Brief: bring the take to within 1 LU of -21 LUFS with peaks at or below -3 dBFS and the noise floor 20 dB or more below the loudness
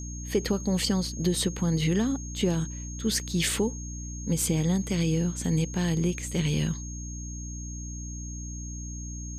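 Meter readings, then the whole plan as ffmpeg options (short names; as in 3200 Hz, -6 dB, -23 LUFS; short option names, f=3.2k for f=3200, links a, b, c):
hum 60 Hz; harmonics up to 300 Hz; hum level -35 dBFS; steady tone 6500 Hz; tone level -41 dBFS; loudness -28.5 LUFS; peak -13.0 dBFS; loudness target -21.0 LUFS
-> -af "bandreject=f=60:t=h:w=4,bandreject=f=120:t=h:w=4,bandreject=f=180:t=h:w=4,bandreject=f=240:t=h:w=4,bandreject=f=300:t=h:w=4"
-af "bandreject=f=6.5k:w=30"
-af "volume=7.5dB"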